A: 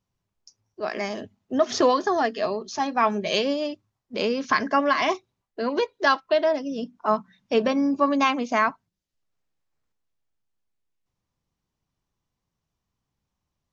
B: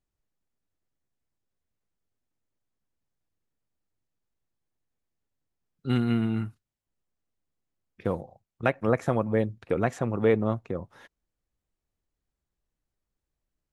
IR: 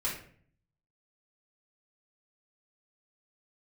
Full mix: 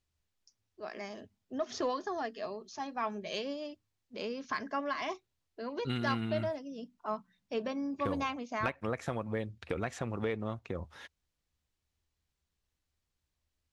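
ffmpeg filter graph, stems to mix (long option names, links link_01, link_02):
-filter_complex "[0:a]volume=-13.5dB[link_01];[1:a]equalizer=frequency=3800:width_type=o:width=2.7:gain=10.5,acompressor=threshold=-29dB:ratio=3,volume=-4dB[link_02];[link_01][link_02]amix=inputs=2:normalize=0,equalizer=frequency=76:width=4.8:gain=13,asoftclip=type=tanh:threshold=-17.5dB"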